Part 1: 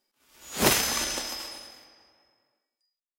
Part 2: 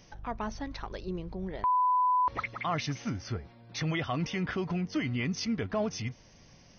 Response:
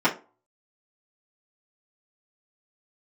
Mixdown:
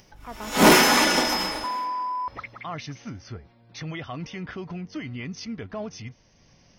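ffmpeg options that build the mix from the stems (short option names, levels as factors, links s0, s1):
-filter_complex "[0:a]volume=1.06,asplit=2[s0][s1];[s1]volume=0.668[s2];[1:a]volume=0.708[s3];[2:a]atrim=start_sample=2205[s4];[s2][s4]afir=irnorm=-1:irlink=0[s5];[s0][s3][s5]amix=inputs=3:normalize=0,acompressor=mode=upward:threshold=0.00282:ratio=2.5,asoftclip=type=tanh:threshold=0.335"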